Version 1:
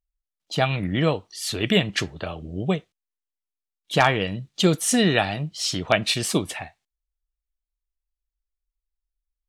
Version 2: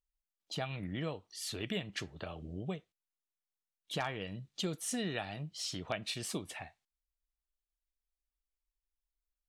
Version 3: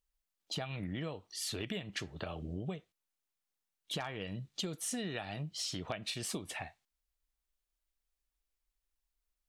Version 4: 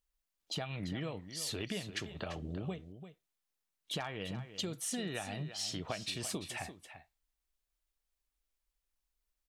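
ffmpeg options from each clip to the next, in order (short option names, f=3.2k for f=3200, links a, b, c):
-af "acompressor=threshold=-34dB:ratio=2,volume=-7.5dB"
-af "acompressor=threshold=-39dB:ratio=6,volume=4dB"
-af "aecho=1:1:342:0.266"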